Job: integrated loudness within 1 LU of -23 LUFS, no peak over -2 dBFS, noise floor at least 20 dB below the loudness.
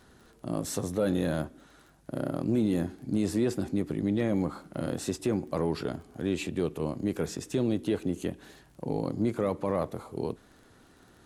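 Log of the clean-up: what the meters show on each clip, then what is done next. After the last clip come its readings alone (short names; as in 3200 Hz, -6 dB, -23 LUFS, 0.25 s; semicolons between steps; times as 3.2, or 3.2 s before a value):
ticks 22/s; loudness -31.0 LUFS; peak -16.5 dBFS; loudness target -23.0 LUFS
-> de-click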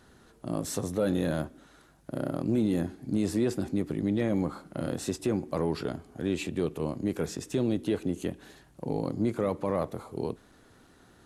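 ticks 0/s; loudness -31.0 LUFS; peak -16.5 dBFS; loudness target -23.0 LUFS
-> gain +8 dB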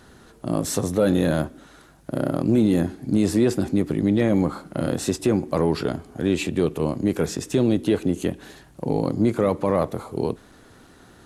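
loudness -23.0 LUFS; peak -8.5 dBFS; noise floor -51 dBFS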